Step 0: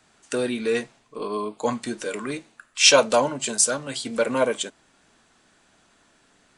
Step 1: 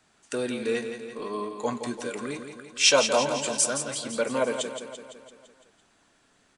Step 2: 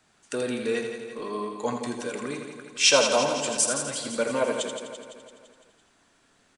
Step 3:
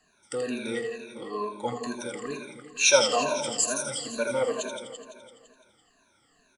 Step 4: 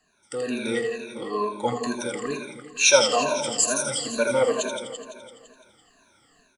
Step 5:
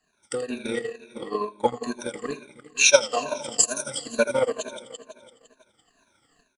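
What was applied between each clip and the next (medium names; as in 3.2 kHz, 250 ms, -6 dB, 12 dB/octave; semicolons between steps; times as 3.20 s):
feedback delay 169 ms, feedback 59%, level -8.5 dB; trim -4.5 dB
delay 82 ms -7.5 dB
drifting ripple filter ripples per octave 1.5, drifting -2.2 Hz, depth 20 dB; trim -6 dB
level rider gain up to 7 dB; trim -1.5 dB
transient shaper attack +10 dB, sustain -11 dB; trim -5 dB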